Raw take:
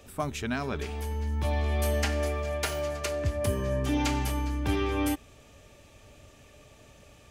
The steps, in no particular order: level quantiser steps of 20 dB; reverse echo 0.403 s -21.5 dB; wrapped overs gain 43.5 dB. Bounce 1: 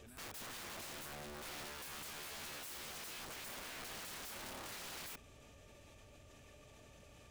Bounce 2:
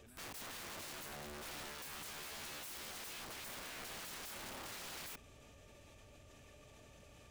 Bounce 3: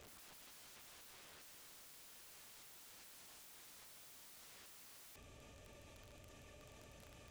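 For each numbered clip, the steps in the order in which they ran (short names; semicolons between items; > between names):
level quantiser > reverse echo > wrapped overs; reverse echo > level quantiser > wrapped overs; reverse echo > wrapped overs > level quantiser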